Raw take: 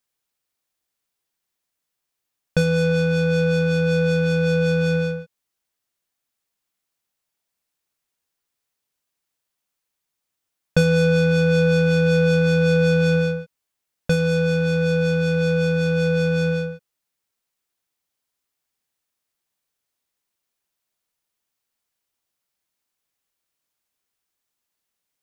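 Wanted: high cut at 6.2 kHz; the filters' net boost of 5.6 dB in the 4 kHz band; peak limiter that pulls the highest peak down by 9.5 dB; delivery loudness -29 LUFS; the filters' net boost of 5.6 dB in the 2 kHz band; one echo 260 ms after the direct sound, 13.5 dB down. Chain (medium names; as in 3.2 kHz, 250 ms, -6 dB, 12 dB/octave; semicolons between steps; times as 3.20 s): low-pass 6.2 kHz; peaking EQ 2 kHz +8 dB; peaking EQ 4 kHz +5 dB; peak limiter -13 dBFS; delay 260 ms -13.5 dB; trim -9 dB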